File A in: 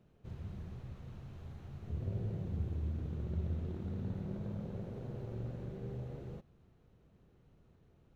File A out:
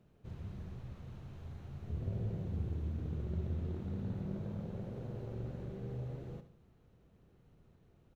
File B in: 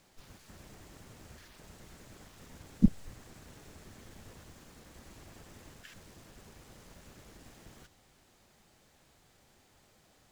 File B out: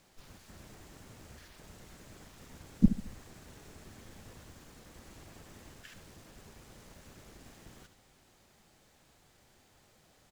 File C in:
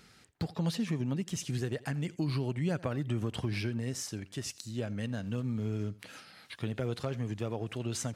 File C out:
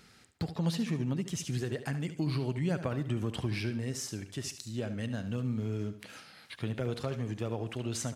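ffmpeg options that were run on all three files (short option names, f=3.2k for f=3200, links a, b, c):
-af "aecho=1:1:72|144|216|288:0.251|0.0929|0.0344|0.0127"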